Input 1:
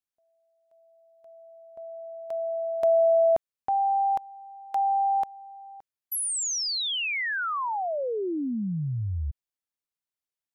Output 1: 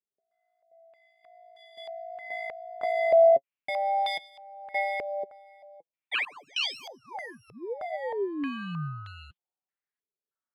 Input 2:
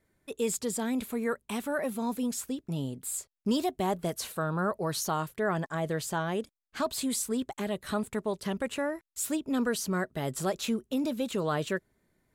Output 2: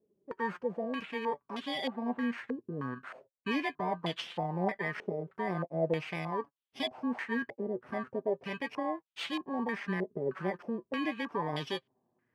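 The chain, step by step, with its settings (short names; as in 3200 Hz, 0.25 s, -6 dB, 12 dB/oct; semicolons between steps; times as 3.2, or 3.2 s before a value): FFT order left unsorted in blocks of 32 samples; HPF 150 Hz 12 dB/oct; flange 0.2 Hz, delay 4.7 ms, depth 4 ms, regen +36%; stepped low-pass 3.2 Hz 450–3300 Hz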